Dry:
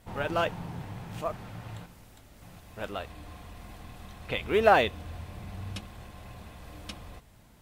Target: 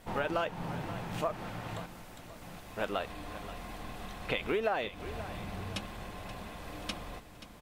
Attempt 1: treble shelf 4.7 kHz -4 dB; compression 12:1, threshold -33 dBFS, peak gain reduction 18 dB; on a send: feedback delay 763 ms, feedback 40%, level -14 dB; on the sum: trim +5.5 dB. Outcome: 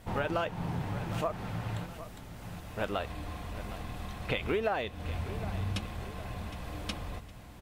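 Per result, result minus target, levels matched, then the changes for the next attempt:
echo 233 ms late; 125 Hz band +5.5 dB
change: feedback delay 530 ms, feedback 40%, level -14 dB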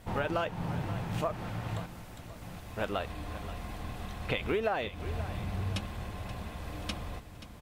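125 Hz band +5.5 dB
add after compression: peaking EQ 80 Hz -10 dB 1.7 oct

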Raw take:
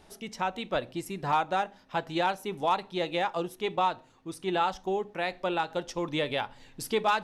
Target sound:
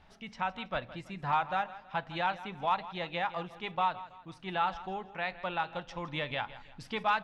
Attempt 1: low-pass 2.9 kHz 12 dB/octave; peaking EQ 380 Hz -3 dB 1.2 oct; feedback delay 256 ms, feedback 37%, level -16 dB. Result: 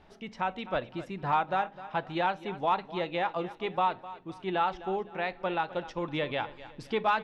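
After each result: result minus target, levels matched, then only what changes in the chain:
echo 93 ms late; 500 Hz band +3.5 dB
change: feedback delay 163 ms, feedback 37%, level -16 dB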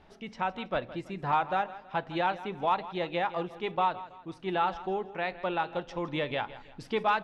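500 Hz band +3.5 dB
change: peaking EQ 380 Hz -14 dB 1.2 oct

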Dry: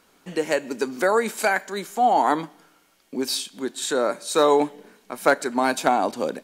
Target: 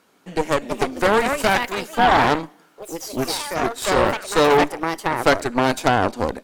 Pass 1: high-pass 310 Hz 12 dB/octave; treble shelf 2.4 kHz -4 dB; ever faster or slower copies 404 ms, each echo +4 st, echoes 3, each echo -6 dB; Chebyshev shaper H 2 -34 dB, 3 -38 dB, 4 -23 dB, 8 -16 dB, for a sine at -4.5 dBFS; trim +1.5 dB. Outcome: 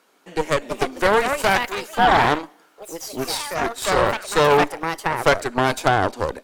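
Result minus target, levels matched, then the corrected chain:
250 Hz band -3.5 dB
high-pass 98 Hz 12 dB/octave; treble shelf 2.4 kHz -4 dB; ever faster or slower copies 404 ms, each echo +4 st, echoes 3, each echo -6 dB; Chebyshev shaper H 2 -34 dB, 3 -38 dB, 4 -23 dB, 8 -16 dB, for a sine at -4.5 dBFS; trim +1.5 dB

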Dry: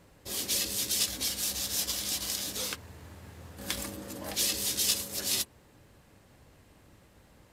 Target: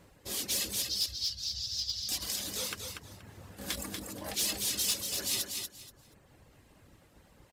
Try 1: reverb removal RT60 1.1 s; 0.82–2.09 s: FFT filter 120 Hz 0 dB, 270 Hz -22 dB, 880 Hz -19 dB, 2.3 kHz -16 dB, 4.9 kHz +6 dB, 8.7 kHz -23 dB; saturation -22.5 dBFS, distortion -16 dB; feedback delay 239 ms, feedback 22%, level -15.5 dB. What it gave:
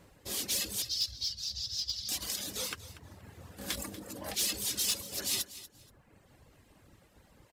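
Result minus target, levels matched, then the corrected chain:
echo-to-direct -10 dB
reverb removal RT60 1.1 s; 0.82–2.09 s: FFT filter 120 Hz 0 dB, 270 Hz -22 dB, 880 Hz -19 dB, 2.3 kHz -16 dB, 4.9 kHz +6 dB, 8.7 kHz -23 dB; saturation -22.5 dBFS, distortion -16 dB; feedback delay 239 ms, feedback 22%, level -5.5 dB

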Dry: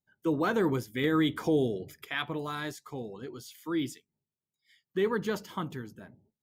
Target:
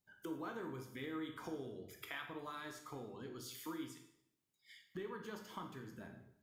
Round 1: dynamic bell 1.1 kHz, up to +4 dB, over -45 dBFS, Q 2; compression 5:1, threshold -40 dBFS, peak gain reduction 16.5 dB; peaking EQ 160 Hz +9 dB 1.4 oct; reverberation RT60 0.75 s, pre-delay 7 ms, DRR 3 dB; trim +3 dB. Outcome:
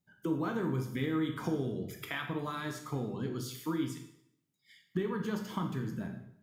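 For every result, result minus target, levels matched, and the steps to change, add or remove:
compression: peak gain reduction -8 dB; 125 Hz band +6.0 dB
change: compression 5:1, threshold -50 dBFS, peak gain reduction 24.5 dB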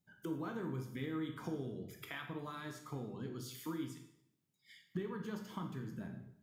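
125 Hz band +6.5 dB
change: peaking EQ 160 Hz -2.5 dB 1.4 oct

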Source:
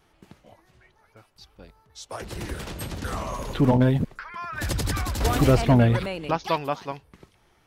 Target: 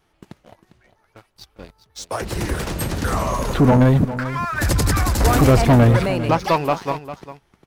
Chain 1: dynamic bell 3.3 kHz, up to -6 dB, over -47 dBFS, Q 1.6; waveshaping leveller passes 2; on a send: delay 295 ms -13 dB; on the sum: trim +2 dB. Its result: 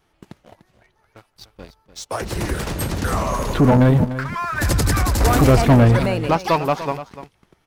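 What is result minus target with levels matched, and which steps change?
echo 106 ms early
change: delay 401 ms -13 dB

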